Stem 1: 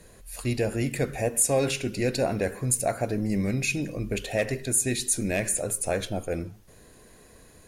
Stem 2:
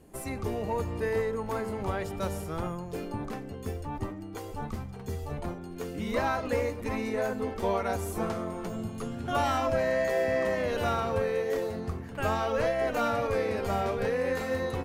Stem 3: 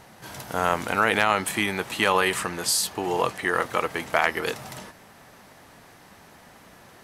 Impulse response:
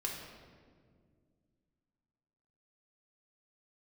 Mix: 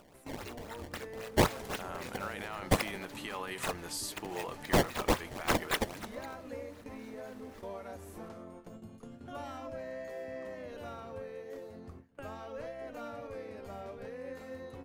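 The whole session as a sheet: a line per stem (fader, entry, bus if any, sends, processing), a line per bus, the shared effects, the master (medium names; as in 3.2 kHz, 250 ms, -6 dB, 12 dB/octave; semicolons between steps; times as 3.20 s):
-3.0 dB, 0.00 s, no send, differentiator; decimation with a swept rate 20×, swing 160% 3.8 Hz
-17.0 dB, 0.00 s, no send, small resonant body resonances 280/560 Hz, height 7 dB, ringing for 45 ms
-13.5 dB, 1.25 s, no send, peak limiter -14 dBFS, peak gain reduction 9 dB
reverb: none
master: gate with hold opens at -41 dBFS; upward compressor, threshold -42 dBFS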